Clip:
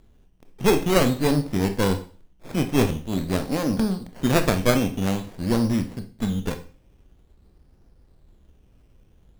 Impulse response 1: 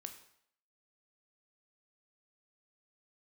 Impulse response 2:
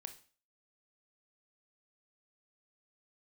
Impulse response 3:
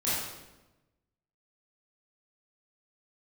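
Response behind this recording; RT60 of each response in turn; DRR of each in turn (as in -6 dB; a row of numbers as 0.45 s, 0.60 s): 2; 0.65 s, 0.40 s, 1.0 s; 6.0 dB, 7.5 dB, -11.0 dB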